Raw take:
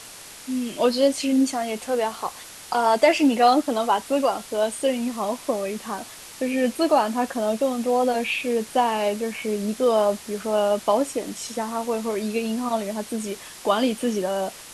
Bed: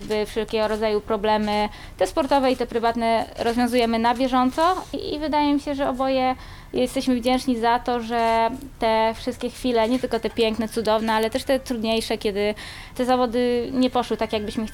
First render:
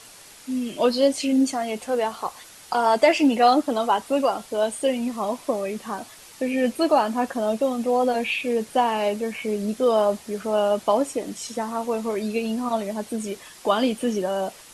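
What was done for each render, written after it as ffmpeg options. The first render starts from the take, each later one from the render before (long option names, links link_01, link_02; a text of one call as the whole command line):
ffmpeg -i in.wav -af "afftdn=noise_reduction=6:noise_floor=-42" out.wav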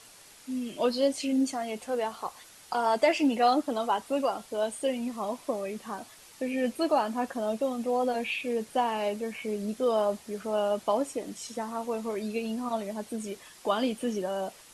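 ffmpeg -i in.wav -af "volume=-6.5dB" out.wav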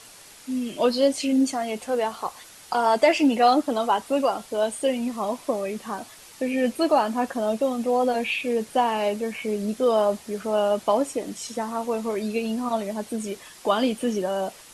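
ffmpeg -i in.wav -af "acontrast=40" out.wav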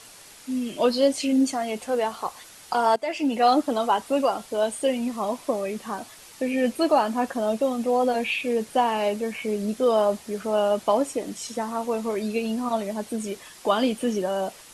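ffmpeg -i in.wav -filter_complex "[0:a]asplit=2[link_01][link_02];[link_01]atrim=end=2.96,asetpts=PTS-STARTPTS,afade=type=out:start_time=2.956:duration=0.004:curve=hsin:silence=0.11885[link_03];[link_02]atrim=start=2.96,asetpts=PTS-STARTPTS,afade=type=in:duration=0.58:silence=0.11885[link_04];[link_03][link_04]concat=n=2:v=0:a=1" out.wav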